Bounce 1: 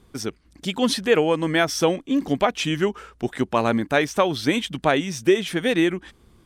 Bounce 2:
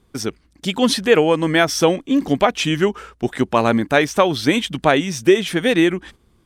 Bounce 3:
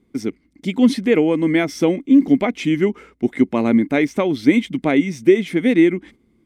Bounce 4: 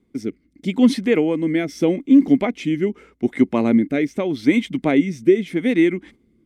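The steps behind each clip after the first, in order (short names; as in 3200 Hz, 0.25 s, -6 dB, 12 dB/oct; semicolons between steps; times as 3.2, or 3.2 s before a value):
gate -46 dBFS, range -8 dB; gain +4.5 dB
small resonant body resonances 260/2100 Hz, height 17 dB, ringing for 20 ms; gain -11 dB
rotary speaker horn 0.8 Hz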